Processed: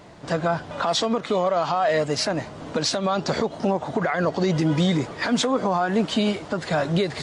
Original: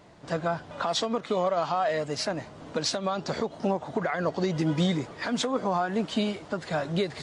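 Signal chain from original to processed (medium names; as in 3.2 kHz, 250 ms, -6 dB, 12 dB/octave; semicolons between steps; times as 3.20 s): peak limiter -20.5 dBFS, peak gain reduction 4 dB; trim +7.5 dB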